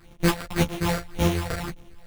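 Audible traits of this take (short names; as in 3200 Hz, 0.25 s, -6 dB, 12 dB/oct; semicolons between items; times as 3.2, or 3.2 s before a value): a buzz of ramps at a fixed pitch in blocks of 256 samples; phasing stages 6, 1.8 Hz, lowest notch 240–2000 Hz; aliases and images of a low sample rate 6300 Hz, jitter 0%; a shimmering, thickened sound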